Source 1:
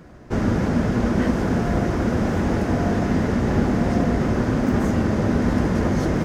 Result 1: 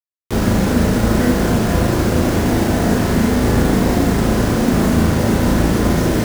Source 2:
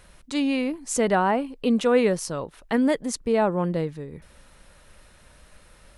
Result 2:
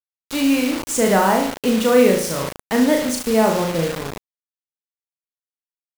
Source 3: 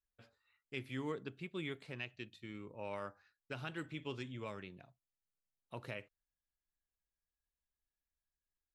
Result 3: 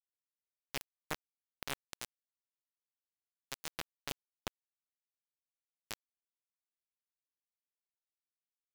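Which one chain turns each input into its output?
flutter echo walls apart 6.2 m, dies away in 0.6 s; bit-crush 5-bit; gain +3 dB

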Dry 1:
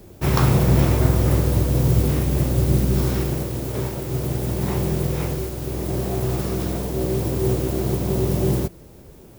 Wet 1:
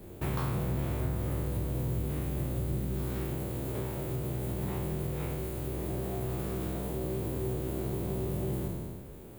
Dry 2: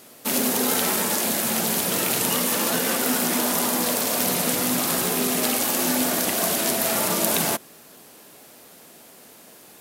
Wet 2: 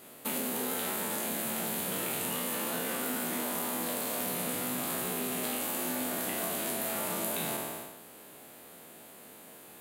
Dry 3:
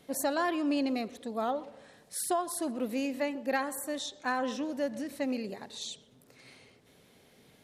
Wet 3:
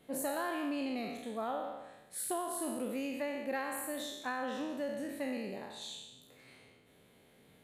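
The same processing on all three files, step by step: spectral trails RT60 0.99 s; bell 5500 Hz -11 dB 0.56 oct; compressor 3:1, threshold -28 dBFS; gain -5 dB

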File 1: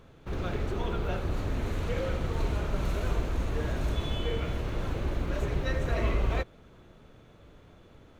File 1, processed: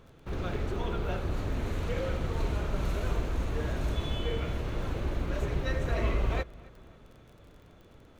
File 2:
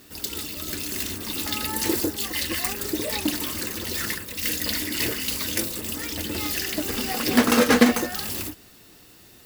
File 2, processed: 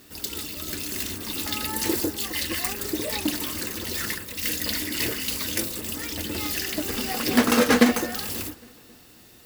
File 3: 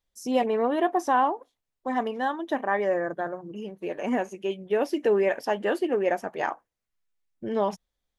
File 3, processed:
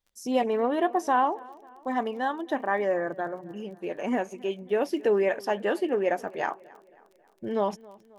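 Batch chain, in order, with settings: crackle 27/s -45 dBFS; darkening echo 0.27 s, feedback 52%, low-pass 3700 Hz, level -22.5 dB; gain -1 dB

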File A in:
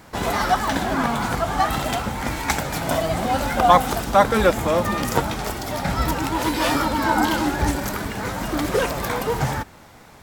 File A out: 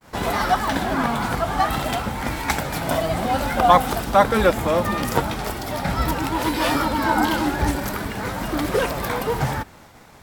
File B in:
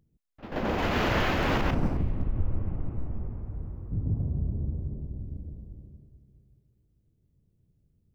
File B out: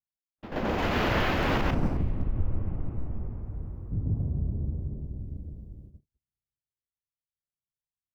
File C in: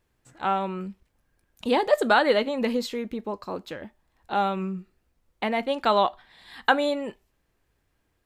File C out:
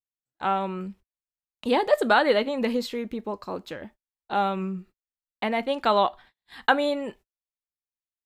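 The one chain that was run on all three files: gate -47 dBFS, range -41 dB; dynamic EQ 6700 Hz, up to -4 dB, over -46 dBFS, Q 2.1

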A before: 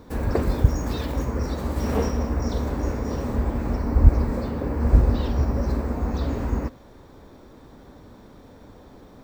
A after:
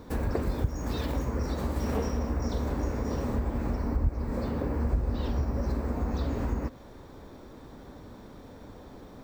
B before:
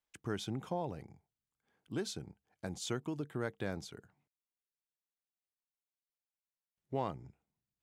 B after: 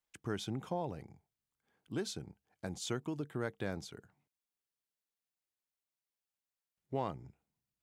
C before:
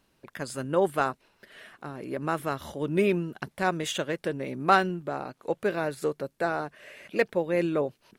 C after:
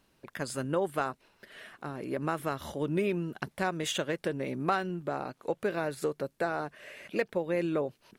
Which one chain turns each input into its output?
compressor 3:1, threshold -27 dBFS

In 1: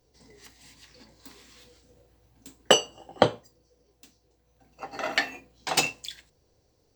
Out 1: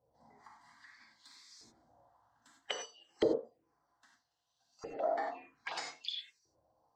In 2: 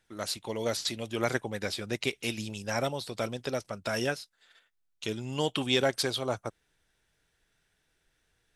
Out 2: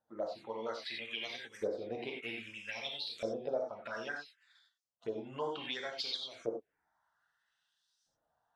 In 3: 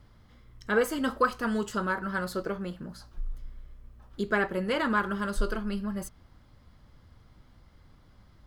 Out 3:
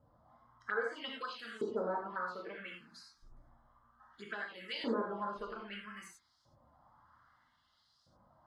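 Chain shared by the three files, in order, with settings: bin magnitudes rounded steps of 15 dB; LFO band-pass saw up 0.62 Hz 440–5800 Hz; LPF 12000 Hz; high shelf 3900 Hz -4 dB; non-linear reverb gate 0.12 s flat, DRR -0.5 dB; dynamic EQ 390 Hz, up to +5 dB, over -39 dBFS, Q 0.97; compressor 2:1, threshold -44 dBFS; envelope phaser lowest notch 390 Hz, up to 2700 Hz, full sweep at -38.5 dBFS; gain +7 dB

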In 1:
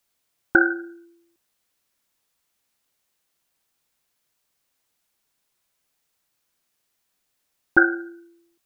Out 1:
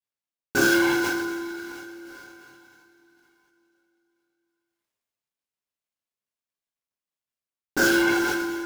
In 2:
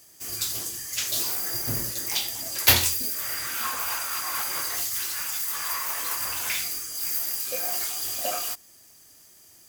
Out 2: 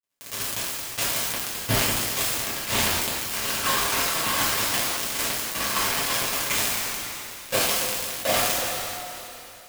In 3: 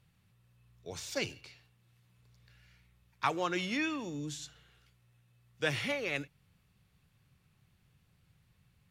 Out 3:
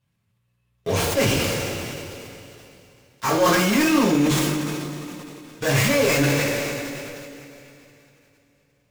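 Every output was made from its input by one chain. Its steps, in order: switching dead time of 0.13 ms; sample leveller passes 5; reverse; compressor 6:1, threshold -25 dBFS; reverse; two-slope reverb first 0.35 s, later 3.9 s, from -17 dB, DRR -6.5 dB; sustainer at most 20 dB/s

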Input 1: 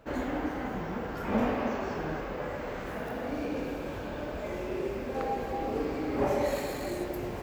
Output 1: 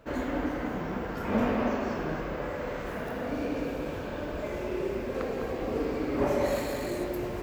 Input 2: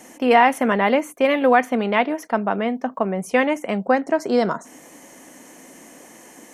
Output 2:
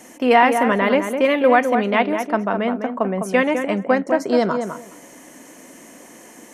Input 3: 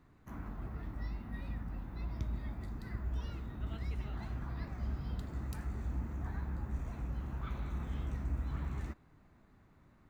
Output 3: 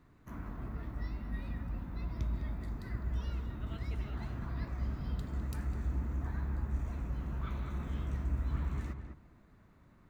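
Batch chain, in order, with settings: notch 800 Hz, Q 13; on a send: darkening echo 0.205 s, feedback 16%, low-pass 1900 Hz, level -6.5 dB; on the sum: gain +1 dB

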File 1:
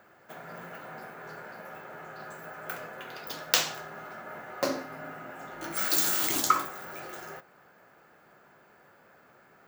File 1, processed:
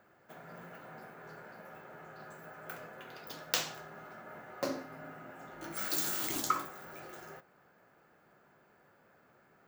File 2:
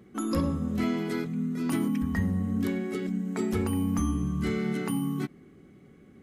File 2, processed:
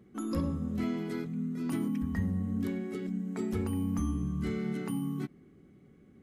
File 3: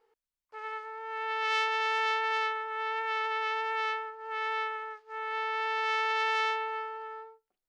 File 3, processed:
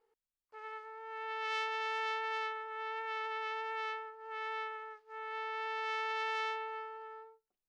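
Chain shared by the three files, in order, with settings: low shelf 400 Hz +5 dB; gain -8 dB

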